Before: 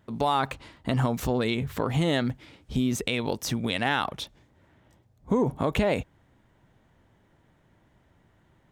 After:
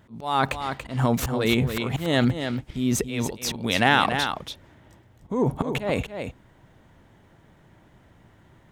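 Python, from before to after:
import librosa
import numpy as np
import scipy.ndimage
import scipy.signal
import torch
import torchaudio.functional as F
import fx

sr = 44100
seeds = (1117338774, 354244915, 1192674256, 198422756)

y = fx.auto_swell(x, sr, attack_ms=272.0)
y = y + 10.0 ** (-7.5 / 20.0) * np.pad(y, (int(284 * sr / 1000.0), 0))[:len(y)]
y = y * librosa.db_to_amplitude(7.0)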